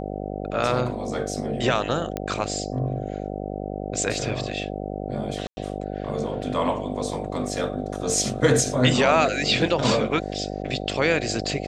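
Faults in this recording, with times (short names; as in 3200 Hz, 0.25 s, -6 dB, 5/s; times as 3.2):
buzz 50 Hz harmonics 15 -31 dBFS
2.17 pop -14 dBFS
5.47–5.57 gap 0.1 s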